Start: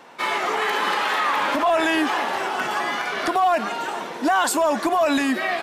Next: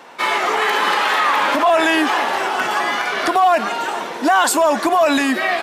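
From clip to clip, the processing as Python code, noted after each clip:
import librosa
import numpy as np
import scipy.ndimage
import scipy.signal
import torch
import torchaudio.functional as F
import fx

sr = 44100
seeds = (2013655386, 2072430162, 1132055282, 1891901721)

y = fx.low_shelf(x, sr, hz=180.0, db=-7.5)
y = F.gain(torch.from_numpy(y), 5.5).numpy()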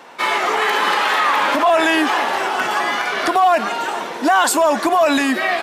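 y = x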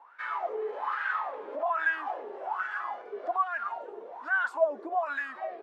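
y = fx.wah_lfo(x, sr, hz=1.2, low_hz=410.0, high_hz=1600.0, q=9.2)
y = F.gain(torch.from_numpy(y), -4.5).numpy()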